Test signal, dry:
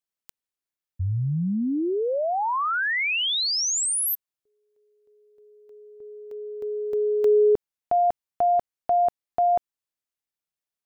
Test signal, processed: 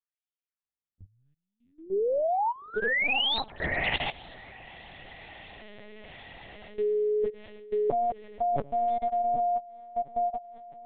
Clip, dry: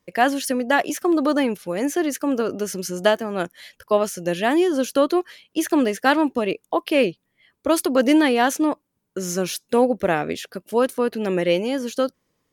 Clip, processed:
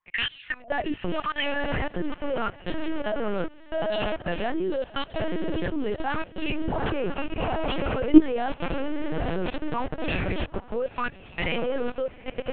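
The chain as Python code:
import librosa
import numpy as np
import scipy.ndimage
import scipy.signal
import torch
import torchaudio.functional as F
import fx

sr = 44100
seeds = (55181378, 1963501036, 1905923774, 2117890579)

p1 = scipy.signal.medfilt(x, 9)
p2 = fx.rider(p1, sr, range_db=5, speed_s=0.5)
p3 = p1 + F.gain(torch.from_numpy(p2), 2.5).numpy()
p4 = fx.dynamic_eq(p3, sr, hz=2800.0, q=0.77, threshold_db=-32.0, ratio=3.0, max_db=3)
p5 = fx.filter_lfo_highpass(p4, sr, shape='sine', hz=0.82, low_hz=290.0, high_hz=3100.0, q=2.7)
p6 = p5 + fx.echo_diffused(p5, sr, ms=850, feedback_pct=57, wet_db=-8.0, dry=0)
p7 = fx.level_steps(p6, sr, step_db=20)
p8 = fx.lpc_vocoder(p7, sr, seeds[0], excitation='pitch_kept', order=8)
y = F.gain(torch.from_numpy(p8), -6.0).numpy()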